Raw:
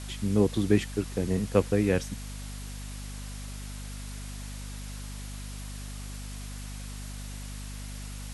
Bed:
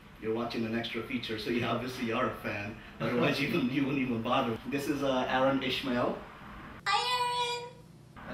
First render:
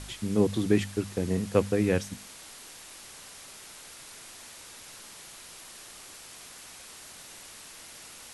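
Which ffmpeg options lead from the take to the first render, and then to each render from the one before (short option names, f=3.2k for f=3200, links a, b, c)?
-af "bandreject=f=50:t=h:w=4,bandreject=f=100:t=h:w=4,bandreject=f=150:t=h:w=4,bandreject=f=200:t=h:w=4,bandreject=f=250:t=h:w=4"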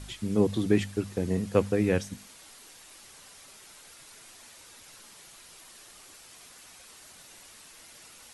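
-af "afftdn=nr=6:nf=-48"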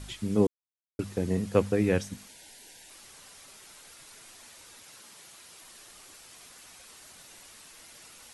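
-filter_complex "[0:a]asettb=1/sr,asplit=3[a][b][c];[a]atrim=end=2.284[d];[b]atrim=start=2.28:end=2.9,asetpts=PTS-STARTPTS,afade=t=in:d=0.004:c=qsin,afade=t=out:st=0.616:d=0.004:c=qsin,asuperstop=centerf=1200:order=8:qfactor=2.8[e];[c]atrim=start=2.896[f];[d][e]acrossfade=d=0.004:c1=hsin:c2=qsin[g];[g][f]acrossfade=d=0.004:c1=qsin:c2=hsin,asettb=1/sr,asplit=3[h][i][j];[h]atrim=end=4.784[k];[i]atrim=start=4.78:end=5.61,asetpts=PTS-STARTPTS,afade=t=in:d=0.004:c=qsin,afade=t=out:st=0.826:d=0.004:c=qsin,highpass=f=95:p=1[l];[j]atrim=start=5.606[m];[k][l]acrossfade=d=0.004:c1=hsin:c2=qsin[n];[n][m]acrossfade=d=0.004:c1=qsin:c2=hsin,asplit=3[o][p][q];[o]atrim=end=0.47,asetpts=PTS-STARTPTS,afade=t=out:st=0.466:d=0.004:c=hsin[r];[p]atrim=start=0.47:end=0.99,asetpts=PTS-STARTPTS,volume=0[s];[q]atrim=start=0.99,asetpts=PTS-STARTPTS,afade=t=in:d=0.004:c=hsin[t];[r][s][t]concat=n=3:v=0:a=1"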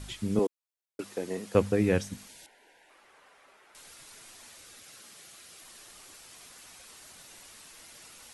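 -filter_complex "[0:a]asettb=1/sr,asplit=3[a][b][c];[a]atrim=end=0.394[d];[b]atrim=start=0.39:end=1.55,asetpts=PTS-STARTPTS,afade=t=in:d=0.004:c=qsin,afade=t=out:st=1.156:d=0.004:c=qsin,highpass=370[e];[c]atrim=start=1.546[f];[d][e]acrossfade=d=0.004:c1=hsin:c2=qsin[g];[g][f]acrossfade=d=0.004:c1=qsin:c2=hsin,asettb=1/sr,asplit=3[h][i][j];[h]atrim=end=2.464[k];[i]atrim=start=2.46:end=3.75,asetpts=PTS-STARTPTS,afade=t=in:d=0.004:c=qsin,afade=t=out:st=1.286:d=0.004:c=qsin,acrossover=split=330 2400:gain=0.141 1 0.1[l][m][n];[l][m][n]amix=inputs=3:normalize=0[o];[j]atrim=start=3.746[p];[k][o]acrossfade=d=0.004:c1=hsin:c2=qsin[q];[q][p]acrossfade=d=0.004:c1=qsin:c2=hsin,asettb=1/sr,asplit=3[r][s][t];[r]atrim=end=4.574[u];[s]atrim=start=4.57:end=5.65,asetpts=PTS-STARTPTS,afade=t=in:d=0.004:c=qsin,afade=t=out:st=1.076:d=0.004:c=qsin,bandreject=f=940:w=5.4[v];[t]atrim=start=5.646[w];[u][v]acrossfade=d=0.004:c1=hsin:c2=qsin[x];[x][w]acrossfade=d=0.004:c1=qsin:c2=hsin"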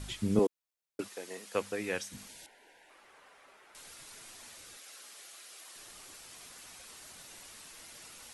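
-filter_complex "[0:a]asplit=3[a][b][c];[a]afade=t=out:st=1.07:d=0.02[d];[b]highpass=f=1.3k:p=1,afade=t=in:st=1.07:d=0.02,afade=t=out:st=2.13:d=0.02[e];[c]afade=t=in:st=2.13:d=0.02[f];[d][e][f]amix=inputs=3:normalize=0,asettb=1/sr,asplit=3[g][h][i];[g]atrim=end=4.774[j];[h]atrim=start=4.77:end=5.76,asetpts=PTS-STARTPTS,afade=t=in:d=0.004:c=qsin,afade=t=out:st=0.986:d=0.004:c=qsin,highpass=420[k];[i]atrim=start=5.756[l];[j][k]acrossfade=d=0.004:c1=hsin:c2=qsin[m];[m][l]acrossfade=d=0.004:c1=qsin:c2=hsin"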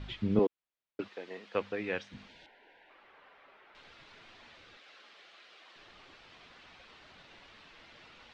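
-af "lowpass=f=3.7k:w=0.5412,lowpass=f=3.7k:w=1.3066"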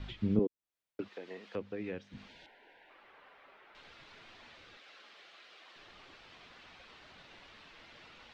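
-filter_complex "[0:a]acrossover=split=420[a][b];[b]acompressor=threshold=-46dB:ratio=8[c];[a][c]amix=inputs=2:normalize=0"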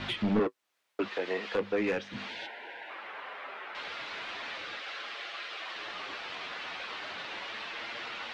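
-filter_complex "[0:a]asplit=2[a][b];[b]highpass=f=720:p=1,volume=29dB,asoftclip=type=tanh:threshold=-15dB[c];[a][c]amix=inputs=2:normalize=0,lowpass=f=3.1k:p=1,volume=-6dB,flanger=delay=8.6:depth=2:regen=-37:speed=0.38:shape=sinusoidal"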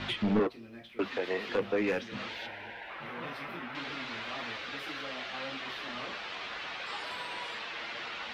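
-filter_complex "[1:a]volume=-15.5dB[a];[0:a][a]amix=inputs=2:normalize=0"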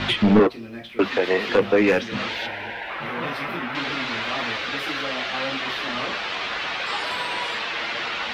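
-af "volume=12dB"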